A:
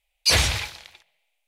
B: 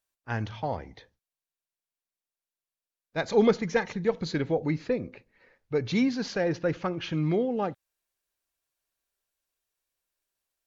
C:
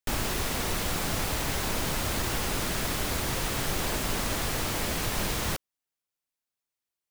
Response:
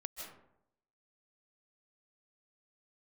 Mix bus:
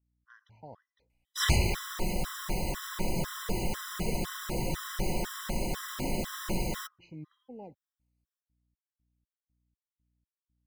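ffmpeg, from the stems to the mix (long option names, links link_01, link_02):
-filter_complex "[0:a]adelay=1100,volume=-3dB[link_01];[1:a]lowshelf=frequency=74:gain=-6.5,aeval=exprs='val(0)+0.000794*(sin(2*PI*60*n/s)+sin(2*PI*2*60*n/s)/2+sin(2*PI*3*60*n/s)/3+sin(2*PI*4*60*n/s)/4+sin(2*PI*5*60*n/s)/5)':channel_layout=same,volume=-17.5dB[link_02];[2:a]aecho=1:1:5.5:0.67,adelay=1300,volume=-3.5dB[link_03];[link_01][link_02][link_03]amix=inputs=3:normalize=0,tiltshelf=frequency=740:gain=3.5,afftfilt=real='re*gt(sin(2*PI*2*pts/sr)*(1-2*mod(floor(b*sr/1024/1000),2)),0)':imag='im*gt(sin(2*PI*2*pts/sr)*(1-2*mod(floor(b*sr/1024/1000),2)),0)':win_size=1024:overlap=0.75"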